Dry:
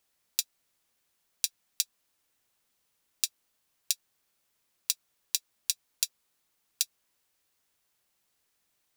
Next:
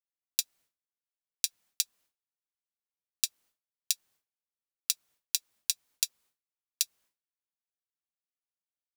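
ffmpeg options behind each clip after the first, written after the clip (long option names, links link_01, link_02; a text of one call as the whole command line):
ffmpeg -i in.wav -af "agate=range=-33dB:threshold=-58dB:ratio=3:detection=peak" out.wav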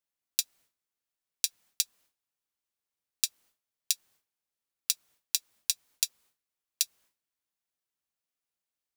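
ffmpeg -i in.wav -af "alimiter=limit=-6dB:level=0:latency=1:release=48,volume=4.5dB" out.wav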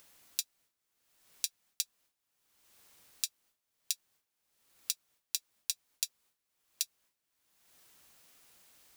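ffmpeg -i in.wav -af "acompressor=mode=upward:threshold=-30dB:ratio=2.5,volume=-6dB" out.wav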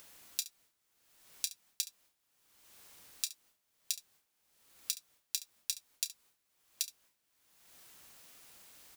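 ffmpeg -i in.wav -af "alimiter=limit=-14dB:level=0:latency=1:release=61,aecho=1:1:30|70:0.188|0.158,volume=4.5dB" out.wav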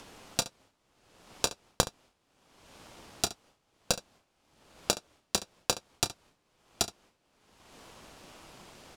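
ffmpeg -i in.wav -filter_complex "[0:a]asplit=2[link_01][link_02];[link_02]acrusher=samples=21:mix=1:aa=0.000001,volume=-5dB[link_03];[link_01][link_03]amix=inputs=2:normalize=0,adynamicsmooth=sensitivity=7.5:basefreq=6600,volume=8dB" out.wav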